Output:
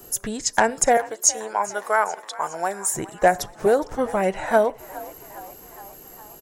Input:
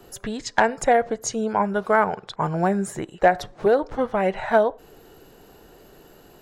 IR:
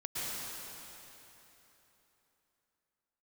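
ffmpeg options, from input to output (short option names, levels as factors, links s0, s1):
-filter_complex "[0:a]asettb=1/sr,asplit=3[s0][s1][s2];[s0]atrim=end=0.974[s3];[s1]atrim=start=0.97:end=2.94,asetpts=PTS-STARTPTS,afade=t=in:d=0.004:c=qsin,afade=t=out:st=1.966:d=0.004:c=qsin,highpass=610[s4];[s2]atrim=start=2.936[s5];[s3][s4]acrossfade=d=0.004:c1=hsin:c2=qsin[s6];[s6][s5]acrossfade=d=0.004:c1=qsin:c2=hsin,aexciter=amount=5.8:drive=2.4:freq=5500,asplit=7[s7][s8][s9][s10][s11][s12][s13];[s8]adelay=412,afreqshift=53,volume=0.112[s14];[s9]adelay=824,afreqshift=106,volume=0.0716[s15];[s10]adelay=1236,afreqshift=159,volume=0.0457[s16];[s11]adelay=1648,afreqshift=212,volume=0.0295[s17];[s12]adelay=2060,afreqshift=265,volume=0.0188[s18];[s13]adelay=2472,afreqshift=318,volume=0.012[s19];[s7][s14][s15][s16][s17][s18][s19]amix=inputs=7:normalize=0"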